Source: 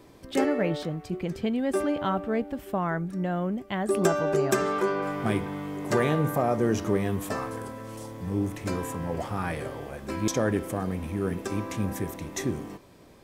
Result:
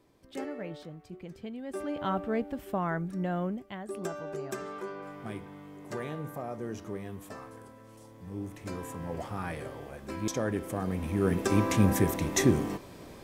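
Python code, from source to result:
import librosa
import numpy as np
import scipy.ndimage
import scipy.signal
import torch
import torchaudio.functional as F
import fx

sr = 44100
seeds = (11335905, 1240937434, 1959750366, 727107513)

y = fx.gain(x, sr, db=fx.line((1.65, -13.0), (2.12, -3.0), (3.45, -3.0), (3.85, -13.0), (8.01, -13.0), (9.11, -5.5), (10.54, -5.5), (11.63, 6.0)))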